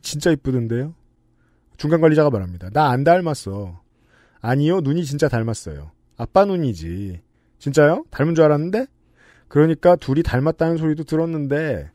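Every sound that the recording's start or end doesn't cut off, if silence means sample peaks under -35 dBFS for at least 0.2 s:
1.79–3.76
4.44–5.88
6.19–7.18
7.62–8.85

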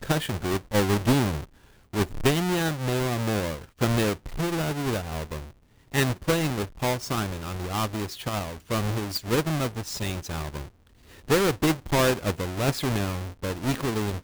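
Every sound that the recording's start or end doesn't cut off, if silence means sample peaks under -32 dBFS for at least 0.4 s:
1.94–5.39
5.94–10.61

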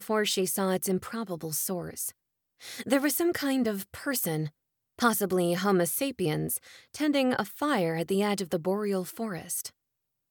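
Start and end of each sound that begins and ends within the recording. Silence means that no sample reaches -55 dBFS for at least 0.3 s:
2.6–4.5
4.99–9.7

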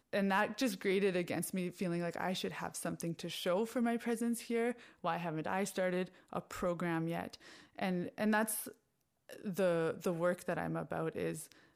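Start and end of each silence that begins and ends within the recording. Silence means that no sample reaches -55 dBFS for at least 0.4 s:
8.74–9.29

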